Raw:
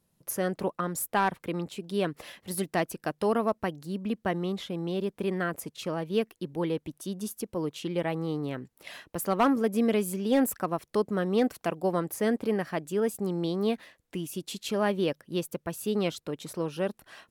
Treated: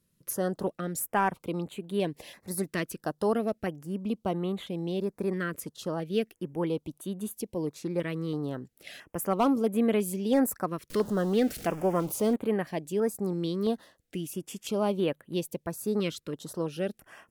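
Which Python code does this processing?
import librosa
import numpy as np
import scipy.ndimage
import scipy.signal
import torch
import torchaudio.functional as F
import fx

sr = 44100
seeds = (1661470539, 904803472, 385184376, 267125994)

y = fx.zero_step(x, sr, step_db=-36.5, at=(10.9, 12.36))
y = fx.filter_held_notch(y, sr, hz=3.0, low_hz=770.0, high_hz=5300.0)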